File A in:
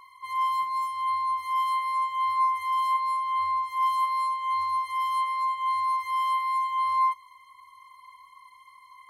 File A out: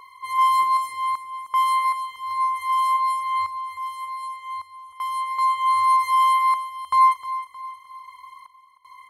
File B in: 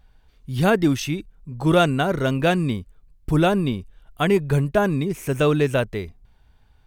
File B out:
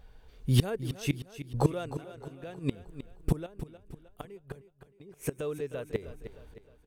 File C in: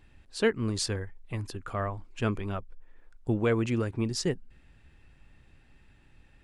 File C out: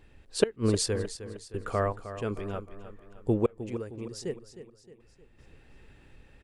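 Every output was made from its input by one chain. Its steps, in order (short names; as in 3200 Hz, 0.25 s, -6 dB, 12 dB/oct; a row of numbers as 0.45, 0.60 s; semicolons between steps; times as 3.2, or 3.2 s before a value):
bell 460 Hz +8.5 dB 0.64 oct; flipped gate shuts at -13 dBFS, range -25 dB; dynamic EQ 9600 Hz, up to +6 dB, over -58 dBFS, Q 1; random-step tremolo 2.6 Hz, depth 100%; on a send: feedback echo 0.31 s, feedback 46%, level -12.5 dB; on the sum: normalise peaks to -9 dBFS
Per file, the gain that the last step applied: +8.0, +4.0, +4.0 dB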